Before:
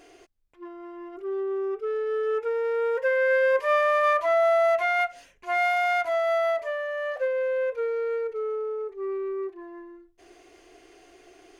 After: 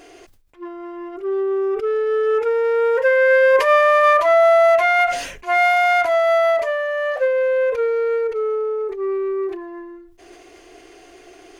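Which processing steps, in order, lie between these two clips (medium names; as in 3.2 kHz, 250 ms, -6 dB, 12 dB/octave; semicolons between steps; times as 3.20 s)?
decay stretcher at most 71 dB/s; trim +8 dB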